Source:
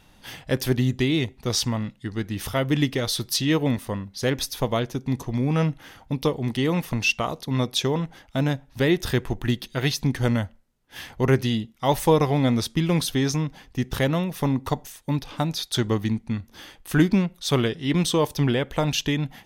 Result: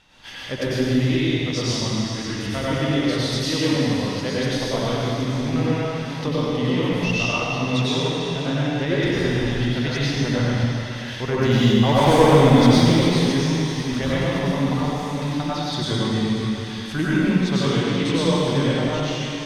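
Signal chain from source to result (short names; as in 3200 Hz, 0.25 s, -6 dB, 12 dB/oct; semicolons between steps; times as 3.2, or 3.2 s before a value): ending faded out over 0.92 s; LPF 5700 Hz 12 dB/oct; 11.38–12.91 sample leveller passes 2; on a send: thinning echo 0.527 s, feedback 78%, high-pass 560 Hz, level -16 dB; on the sum: plate-style reverb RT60 2.4 s, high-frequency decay 1×, pre-delay 80 ms, DRR -9.5 dB; mismatched tape noise reduction encoder only; gain -7 dB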